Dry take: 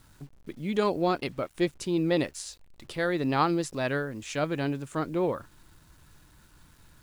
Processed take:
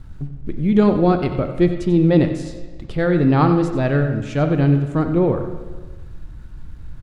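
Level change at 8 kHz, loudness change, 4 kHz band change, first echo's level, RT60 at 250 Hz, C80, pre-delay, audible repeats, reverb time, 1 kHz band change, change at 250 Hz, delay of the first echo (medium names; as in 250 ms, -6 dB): no reading, +11.5 dB, 0.0 dB, -13.0 dB, 1.4 s, 8.5 dB, 32 ms, 1, 1.4 s, +6.0 dB, +13.0 dB, 92 ms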